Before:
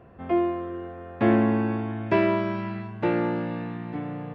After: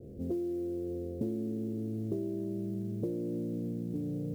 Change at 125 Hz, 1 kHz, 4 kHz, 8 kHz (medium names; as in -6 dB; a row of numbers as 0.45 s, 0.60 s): -6.5 dB, under -30 dB, under -20 dB, no reading